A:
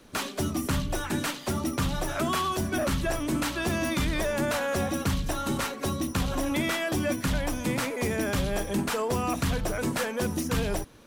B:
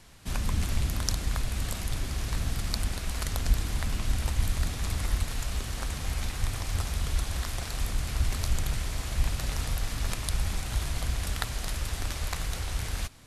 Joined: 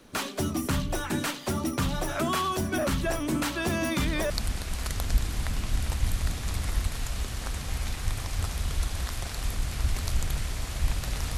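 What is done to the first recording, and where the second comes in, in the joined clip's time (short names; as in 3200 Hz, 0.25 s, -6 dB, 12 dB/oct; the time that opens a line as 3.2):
A
4.3 switch to B from 2.66 s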